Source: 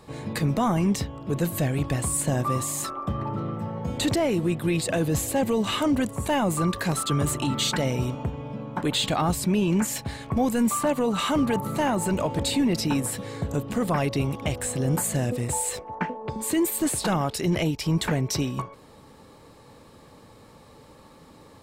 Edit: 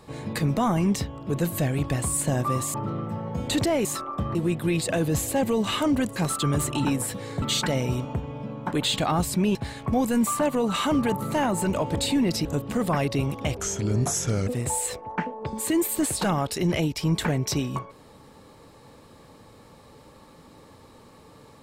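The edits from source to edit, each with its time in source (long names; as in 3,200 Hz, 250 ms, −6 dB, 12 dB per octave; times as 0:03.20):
0:02.74–0:03.24: move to 0:04.35
0:06.16–0:06.83: remove
0:09.65–0:09.99: remove
0:12.89–0:13.46: move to 0:07.52
0:14.58–0:15.30: play speed 80%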